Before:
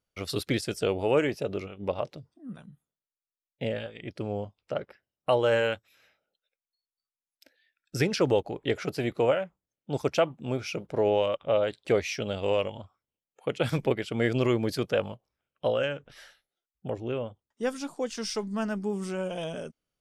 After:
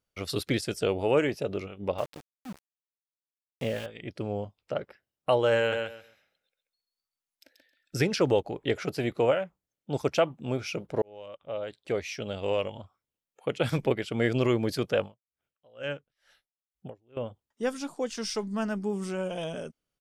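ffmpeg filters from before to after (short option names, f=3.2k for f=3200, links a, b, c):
-filter_complex "[0:a]asettb=1/sr,asplit=3[a][b][c];[a]atrim=end=1.984[d];[b]atrim=start=1.98:end=3.86,asetpts=PTS-STARTPTS,afade=t=in:d=0.004:c=qsin,afade=t=out:st=1.876:d=0.004:c=qsin,aeval=exprs='val(0)*gte(abs(val(0)),0.0106)':c=same[e];[c]atrim=start=3.856[f];[d][e]acrossfade=d=0.004:c1=hsin:c2=qsin[g];[g][f]acrossfade=d=0.004:c1=qsin:c2=hsin,asplit=3[h][i][j];[h]afade=t=out:st=5.71:d=0.02[k];[i]aecho=1:1:134|268|402:0.562|0.112|0.0225,afade=t=in:st=5.71:d=0.02,afade=t=out:st=8.05:d=0.02[l];[j]afade=t=in:st=8.05:d=0.02[m];[k][l][m]amix=inputs=3:normalize=0,asettb=1/sr,asplit=3[n][o][p];[n]atrim=end=15.004[q];[o]atrim=start=15:end=17.17,asetpts=PTS-STARTPTS,afade=t=in:d=0.004:c=qsin,afade=t=out:st=2.166:d=0.004:c=qsin,aeval=exprs='val(0)*pow(10,-34*(0.5-0.5*cos(2*PI*2.2*n/s))/20)':c=same[r];[p]atrim=start=17.166[s];[q][r]acrossfade=d=0.004:c1=hsin:c2=qsin[t];[t][s]acrossfade=d=0.004:c1=qsin:c2=hsin,asplit=2[u][v];[u]atrim=end=11.02,asetpts=PTS-STARTPTS,afade=t=out:st=11.016:d=0.004:c=hsin[w];[v]atrim=start=11.02,asetpts=PTS-STARTPTS,afade=t=in:d=2.55:c=qsin[x];[w][x]concat=n=2:v=0:a=1"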